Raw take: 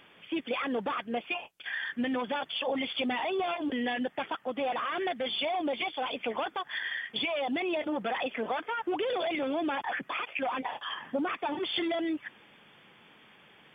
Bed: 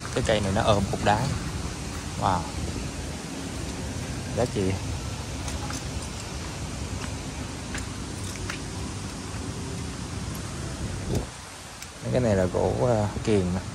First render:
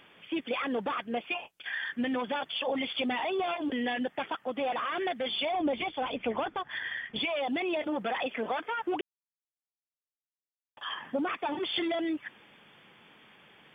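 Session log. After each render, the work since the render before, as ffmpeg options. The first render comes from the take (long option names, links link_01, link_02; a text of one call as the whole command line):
ffmpeg -i in.wav -filter_complex "[0:a]asettb=1/sr,asplit=3[link_01][link_02][link_03];[link_01]atrim=end=5.524[link_04];[link_02]atrim=start=5.52:end=7.19,asetpts=PTS-STARTPTS,afade=type=in:duration=0.004:curve=qsin,afade=type=out:start_time=1.666:duration=0.004:curve=qsin,aemphasis=mode=reproduction:type=bsi[link_05];[link_03]atrim=start=7.186[link_06];[link_04][link_05]acrossfade=duration=0.004:curve1=hsin:curve2=qsin[link_07];[link_07][link_06]acrossfade=duration=0.004:curve1=qsin:curve2=hsin,asplit=3[link_08][link_09][link_10];[link_08]atrim=end=9.01,asetpts=PTS-STARTPTS,afade=type=out:start_time=9.006:duration=0.004:curve=hsin[link_11];[link_09]atrim=start=9.01:end=10.77,asetpts=PTS-STARTPTS,volume=0[link_12];[link_10]atrim=start=10.77,asetpts=PTS-STARTPTS,afade=type=in:duration=0.004:curve=hsin[link_13];[link_11][link_12][link_13]concat=n=3:v=0:a=1" out.wav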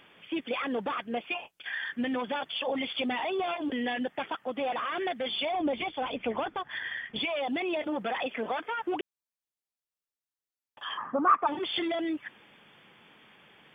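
ffmpeg -i in.wav -filter_complex "[0:a]asplit=3[link_01][link_02][link_03];[link_01]afade=type=out:start_time=10.97:duration=0.02[link_04];[link_02]lowpass=frequency=1200:width_type=q:width=7.9,afade=type=in:start_time=10.97:duration=0.02,afade=type=out:start_time=11.46:duration=0.02[link_05];[link_03]afade=type=in:start_time=11.46:duration=0.02[link_06];[link_04][link_05][link_06]amix=inputs=3:normalize=0" out.wav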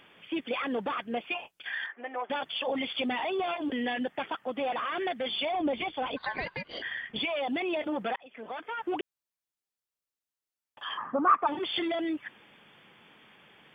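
ffmpeg -i in.wav -filter_complex "[0:a]asettb=1/sr,asplit=3[link_01][link_02][link_03];[link_01]atrim=end=1.864[link_04];[link_02]atrim=start=1.86:end=2.3,asetpts=PTS-STARTPTS,afade=type=in:duration=0.004:curve=qsin,afade=type=out:start_time=0.436:duration=0.004:curve=qsin,highpass=frequency=440:width=0.5412,highpass=frequency=440:width=1.3066,equalizer=frequency=520:width_type=q:width=4:gain=-3,equalizer=frequency=740:width_type=q:width=4:gain=5,equalizer=frequency=1600:width_type=q:width=4:gain=-5,lowpass=frequency=2100:width=0.5412,lowpass=frequency=2100:width=1.3066[link_05];[link_03]atrim=start=2.296[link_06];[link_04][link_05]acrossfade=duration=0.004:curve1=hsin:curve2=qsin[link_07];[link_07][link_06]acrossfade=duration=0.004:curve1=qsin:curve2=hsin,asplit=3[link_08][link_09][link_10];[link_08]afade=type=out:start_time=6.16:duration=0.02[link_11];[link_09]aeval=exprs='val(0)*sin(2*PI*1300*n/s)':channel_layout=same,afade=type=in:start_time=6.16:duration=0.02,afade=type=out:start_time=6.81:duration=0.02[link_12];[link_10]afade=type=in:start_time=6.81:duration=0.02[link_13];[link_11][link_12][link_13]amix=inputs=3:normalize=0,asplit=2[link_14][link_15];[link_14]atrim=end=8.16,asetpts=PTS-STARTPTS,afade=type=out:start_time=8.156:duration=0.004:curve=hsin[link_16];[link_15]atrim=start=8.16,asetpts=PTS-STARTPTS,afade=type=in:duration=0.8[link_17];[link_16][link_17]concat=n=2:v=0:a=1" out.wav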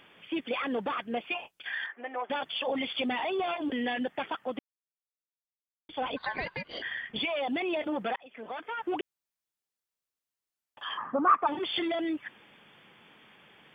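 ffmpeg -i in.wav -filter_complex "[0:a]asplit=3[link_01][link_02][link_03];[link_01]atrim=end=4.59,asetpts=PTS-STARTPTS,afade=type=out:start_time=4.586:duration=0.004:curve=hsin[link_04];[link_02]atrim=start=4.59:end=5.89,asetpts=PTS-STARTPTS,volume=0[link_05];[link_03]atrim=start=5.89,asetpts=PTS-STARTPTS,afade=type=in:duration=0.004:curve=hsin[link_06];[link_04][link_05][link_06]concat=n=3:v=0:a=1" out.wav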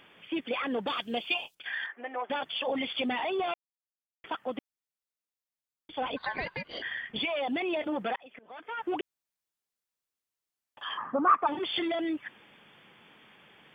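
ffmpeg -i in.wav -filter_complex "[0:a]asettb=1/sr,asplit=3[link_01][link_02][link_03];[link_01]atrim=end=0.874[link_04];[link_02]atrim=start=0.87:end=1.55,asetpts=PTS-STARTPTS,afade=type=in:duration=0.004:curve=qsin,afade=type=out:start_time=0.676:duration=0.004:curve=qsin,highshelf=frequency=2700:width_type=q:width=1.5:gain=11[link_05];[link_03]atrim=start=1.546[link_06];[link_04][link_05]acrossfade=duration=0.004:curve1=hsin:curve2=qsin[link_07];[link_07][link_06]acrossfade=duration=0.004:curve1=qsin:curve2=hsin,asplit=4[link_08][link_09][link_10][link_11];[link_08]atrim=end=3.54,asetpts=PTS-STARTPTS,afade=type=out:start_time=3.536:duration=0.004:curve=hsin[link_12];[link_09]atrim=start=3.54:end=4.24,asetpts=PTS-STARTPTS,volume=0[link_13];[link_10]atrim=start=4.24:end=8.39,asetpts=PTS-STARTPTS,afade=type=in:duration=0.004:curve=hsin,afade=type=out:start_time=4.146:duration=0.004:curve=hsin:silence=0.0630957[link_14];[link_11]atrim=start=8.39,asetpts=PTS-STARTPTS,afade=type=in:duration=0.4:silence=0.0630957[link_15];[link_12][link_13][link_14][link_15]concat=n=4:v=0:a=1" out.wav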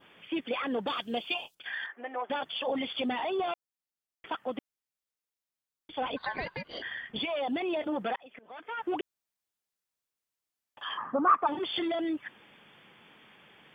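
ffmpeg -i in.wav -af "adynamicequalizer=threshold=0.00355:dfrequency=2300:dqfactor=1.8:tfrequency=2300:tqfactor=1.8:attack=5:release=100:ratio=0.375:range=2.5:mode=cutabove:tftype=bell" out.wav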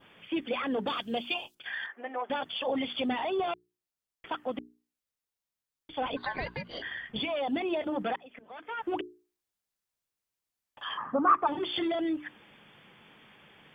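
ffmpeg -i in.wav -af "lowshelf=frequency=170:gain=7,bandreject=frequency=60:width_type=h:width=6,bandreject=frequency=120:width_type=h:width=6,bandreject=frequency=180:width_type=h:width=6,bandreject=frequency=240:width_type=h:width=6,bandreject=frequency=300:width_type=h:width=6,bandreject=frequency=360:width_type=h:width=6,bandreject=frequency=420:width_type=h:width=6" out.wav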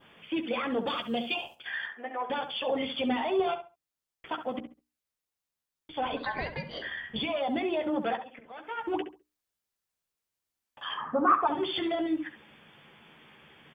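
ffmpeg -i in.wav -filter_complex "[0:a]asplit=2[link_01][link_02];[link_02]adelay=13,volume=-8.5dB[link_03];[link_01][link_03]amix=inputs=2:normalize=0,asplit=2[link_04][link_05];[link_05]adelay=68,lowpass=frequency=2000:poles=1,volume=-8.5dB,asplit=2[link_06][link_07];[link_07]adelay=68,lowpass=frequency=2000:poles=1,volume=0.25,asplit=2[link_08][link_09];[link_09]adelay=68,lowpass=frequency=2000:poles=1,volume=0.25[link_10];[link_04][link_06][link_08][link_10]amix=inputs=4:normalize=0" out.wav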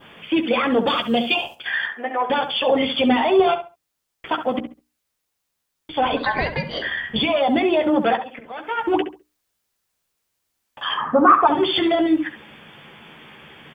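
ffmpeg -i in.wav -af "volume=11.5dB,alimiter=limit=-3dB:level=0:latency=1" out.wav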